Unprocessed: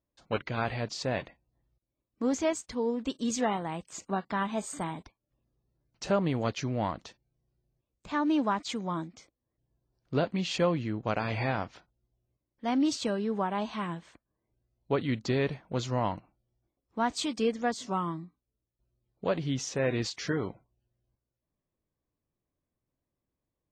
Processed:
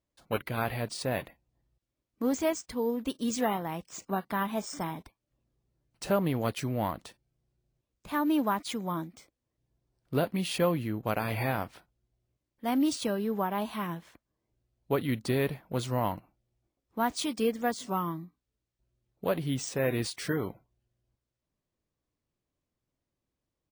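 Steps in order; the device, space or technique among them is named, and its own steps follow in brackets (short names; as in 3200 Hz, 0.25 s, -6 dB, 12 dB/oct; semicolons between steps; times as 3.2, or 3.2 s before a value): crushed at another speed (playback speed 0.8×; sample-and-hold 4×; playback speed 1.25×)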